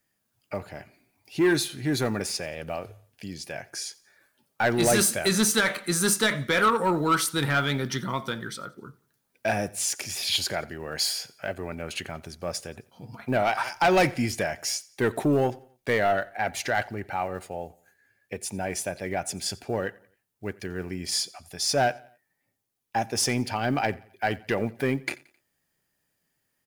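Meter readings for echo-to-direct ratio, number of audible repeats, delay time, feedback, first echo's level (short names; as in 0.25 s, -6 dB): -22.0 dB, 2, 88 ms, 43%, -23.0 dB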